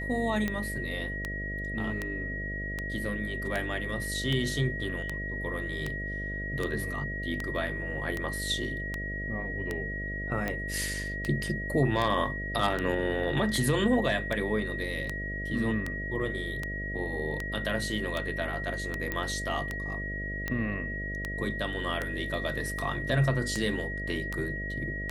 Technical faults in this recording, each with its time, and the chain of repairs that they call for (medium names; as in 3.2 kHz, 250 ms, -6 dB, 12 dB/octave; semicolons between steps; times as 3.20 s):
buzz 50 Hz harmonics 13 -37 dBFS
tick 78 rpm -17 dBFS
whine 1.9 kHz -35 dBFS
19.12 s: pop -17 dBFS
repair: de-click; de-hum 50 Hz, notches 13; band-stop 1.9 kHz, Q 30